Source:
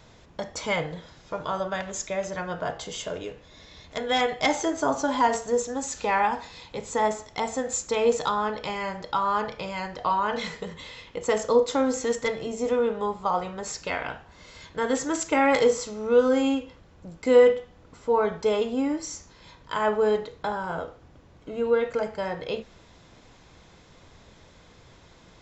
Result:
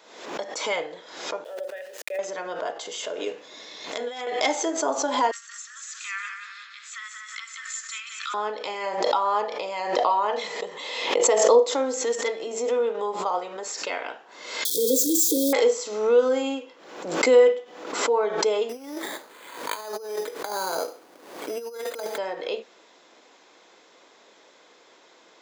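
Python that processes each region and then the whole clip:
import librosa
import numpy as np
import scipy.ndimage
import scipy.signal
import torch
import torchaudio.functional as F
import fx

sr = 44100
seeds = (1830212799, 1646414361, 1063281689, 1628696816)

y = fx.chain(x, sr, fx.vowel_filter(vowel='e'),
    fx.sample_gate(floor_db=-50.5),
    fx.sustainer(db_per_s=71.0), at=(1.44, 2.19))
y = fx.chain(y, sr, fx.bass_treble(bass_db=6, treble_db=3),
    fx.over_compress(threshold_db=-32.0, ratio=-1.0), at=(3.26, 4.27))
y = fx.chain(y, sr, fx.steep_highpass(hz=1200.0, slope=96),
    fx.high_shelf(hz=4700.0, db=-9.0),
    fx.echo_feedback(ms=179, feedback_pct=40, wet_db=-6.0), at=(5.31, 8.34))
y = fx.chain(y, sr, fx.peak_eq(hz=730.0, db=5.5, octaves=1.0),
    fx.notch(hz=1500.0, q=13.0),
    fx.pre_swell(db_per_s=39.0), at=(8.86, 11.69))
y = fx.chain(y, sr, fx.crossing_spikes(level_db=-16.5),
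    fx.brickwall_bandstop(low_hz=550.0, high_hz=3200.0),
    fx.low_shelf(hz=430.0, db=10.0), at=(14.65, 15.53))
y = fx.chain(y, sr, fx.over_compress(threshold_db=-31.0, ratio=-0.5),
    fx.resample_bad(factor=8, down='none', up='hold'), at=(18.69, 22.18))
y = scipy.signal.sosfilt(scipy.signal.butter(4, 320.0, 'highpass', fs=sr, output='sos'), y)
y = fx.dynamic_eq(y, sr, hz=1400.0, q=0.99, threshold_db=-39.0, ratio=4.0, max_db=-4)
y = fx.pre_swell(y, sr, db_per_s=69.0)
y = y * 10.0 ** (1.0 / 20.0)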